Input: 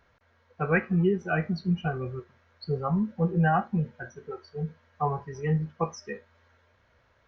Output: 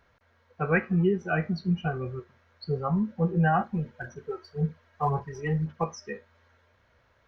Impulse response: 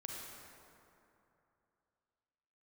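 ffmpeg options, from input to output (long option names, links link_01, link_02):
-filter_complex "[0:a]asettb=1/sr,asplit=3[link_01][link_02][link_03];[link_01]atrim=end=3.604[link_04];[link_02]atrim=start=3.6:end=5.84,asetpts=PTS-STARTPTS,afade=type=in:duration=0.004:curve=qsin,afade=type=out:start_time=2.236:duration=0.004:curve=qsin,aphaser=in_gain=1:out_gain=1:delay=3.2:decay=0.45:speed=1.9:type=sinusoidal[link_05];[link_03]atrim=start=5.836[link_06];[link_04][link_05]acrossfade=duration=0.004:curve1=hsin:curve2=qsin[link_07];[link_07][link_06]acrossfade=duration=0.004:curve1=qsin:curve2=hsin"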